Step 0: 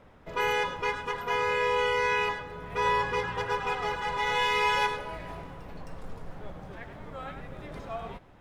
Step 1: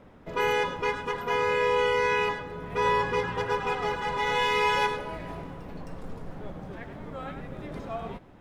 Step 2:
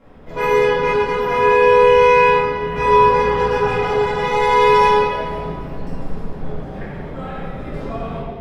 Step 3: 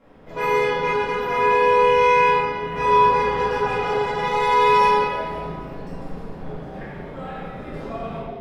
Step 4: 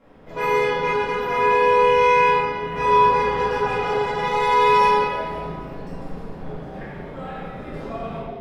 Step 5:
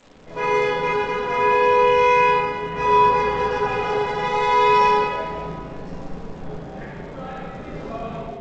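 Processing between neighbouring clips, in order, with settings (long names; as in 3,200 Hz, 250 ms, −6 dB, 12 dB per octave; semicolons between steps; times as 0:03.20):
parametric band 250 Hz +6.5 dB 1.9 octaves
convolution reverb RT60 1.9 s, pre-delay 4 ms, DRR −11.5 dB; level −3.5 dB
low-shelf EQ 130 Hz −7 dB; flutter between parallel walls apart 6.4 metres, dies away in 0.25 s; level −3.5 dB
no processing that can be heard
surface crackle 520 per second −40 dBFS; G.722 64 kbit/s 16,000 Hz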